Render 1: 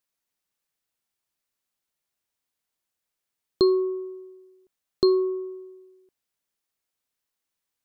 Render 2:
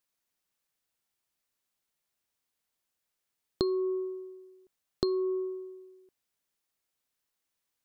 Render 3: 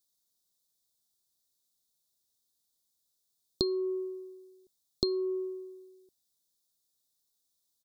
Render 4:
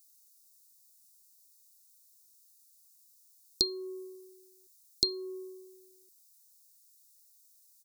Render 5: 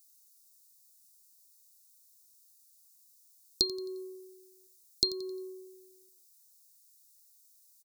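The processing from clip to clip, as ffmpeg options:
-af "acompressor=threshold=-26dB:ratio=12"
-af "firequalizer=gain_entry='entry(190,0);entry(2500,-23);entry(3600,6)':delay=0.05:min_phase=1"
-af "aexciter=amount=13.7:drive=2.6:freq=4.1k,volume=-8.5dB"
-af "aecho=1:1:88|176|264|352:0.158|0.0634|0.0254|0.0101"

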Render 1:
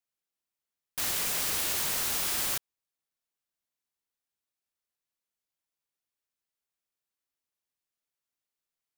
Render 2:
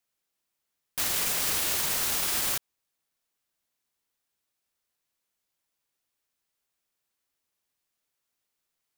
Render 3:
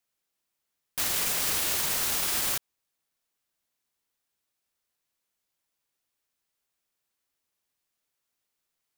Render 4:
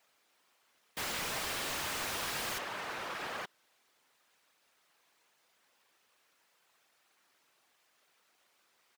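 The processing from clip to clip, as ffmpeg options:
-af "alimiter=level_in=1.5dB:limit=-24dB:level=0:latency=1,volume=-1.5dB,volume=7.5dB"
-af anull
-filter_complex "[0:a]afftfilt=real='hypot(re,im)*cos(2*PI*random(0))':imag='hypot(re,im)*sin(2*PI*random(1))':win_size=512:overlap=0.75,asplit=2[a][b];[b]adelay=874.6,volume=-16dB,highshelf=f=4k:g=-19.7[c];[a][c]amix=inputs=2:normalize=0,asplit=2[d][e];[e]highpass=f=720:p=1,volume=34dB,asoftclip=type=tanh:threshold=-20.5dB[f];[d][f]amix=inputs=2:normalize=0,lowpass=f=1.8k:p=1,volume=-6dB,volume=-2dB"

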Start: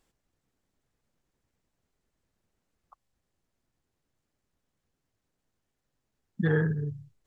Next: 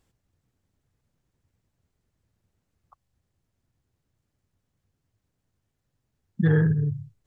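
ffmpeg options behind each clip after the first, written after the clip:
-af "equalizer=f=96:w=0.87:g=12"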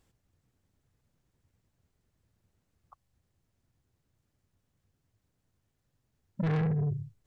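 -af "asoftclip=type=tanh:threshold=-26dB"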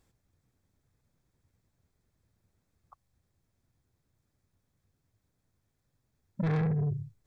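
-af "bandreject=f=2.9k:w=8"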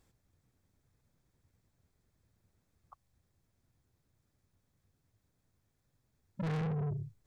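-af "asoftclip=type=tanh:threshold=-32.5dB"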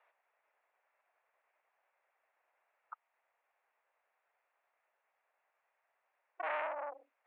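-af "highpass=f=510:t=q:w=0.5412,highpass=f=510:t=q:w=1.307,lowpass=f=2.5k:t=q:w=0.5176,lowpass=f=2.5k:t=q:w=0.7071,lowpass=f=2.5k:t=q:w=1.932,afreqshift=140,volume=7.5dB"

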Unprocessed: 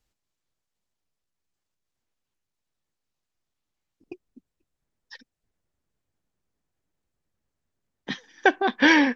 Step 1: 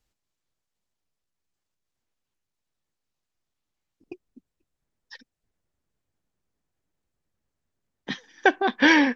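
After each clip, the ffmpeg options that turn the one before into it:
-af anull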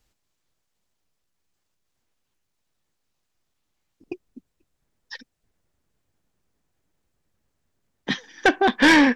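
-af "asoftclip=type=tanh:threshold=-16.5dB,volume=7dB"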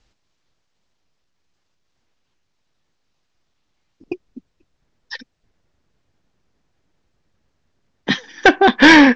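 -af "lowpass=f=6.2k:w=0.5412,lowpass=f=6.2k:w=1.3066,volume=7dB"

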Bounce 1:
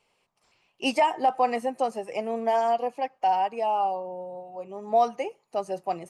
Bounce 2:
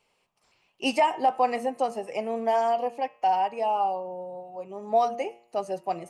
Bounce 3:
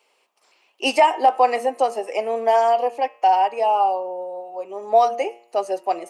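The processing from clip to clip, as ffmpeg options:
-af "bandreject=f=117.7:t=h:w=4,bandreject=f=235.4:t=h:w=4,bandreject=f=353.1:t=h:w=4,bandreject=f=470.8:t=h:w=4,bandreject=f=588.5:t=h:w=4,bandreject=f=706.2:t=h:w=4,bandreject=f=823.9:t=h:w=4,bandreject=f=941.6:t=h:w=4,bandreject=f=1.0593k:t=h:w=4,bandreject=f=1.177k:t=h:w=4,bandreject=f=1.2947k:t=h:w=4,bandreject=f=1.4124k:t=h:w=4,bandreject=f=1.5301k:t=h:w=4,bandreject=f=1.6478k:t=h:w=4,bandreject=f=1.7655k:t=h:w=4,bandreject=f=1.8832k:t=h:w=4,bandreject=f=2.0009k:t=h:w=4,bandreject=f=2.1186k:t=h:w=4,bandreject=f=2.2363k:t=h:w=4,bandreject=f=2.354k:t=h:w=4,bandreject=f=2.4717k:t=h:w=4,bandreject=f=2.5894k:t=h:w=4,bandreject=f=2.7071k:t=h:w=4,bandreject=f=2.8248k:t=h:w=4,bandreject=f=2.9425k:t=h:w=4,bandreject=f=3.0602k:t=h:w=4,bandreject=f=3.1779k:t=h:w=4,bandreject=f=3.2956k:t=h:w=4,bandreject=f=3.4133k:t=h:w=4"
-af "highpass=f=310:w=0.5412,highpass=f=310:w=1.3066,volume=7dB"

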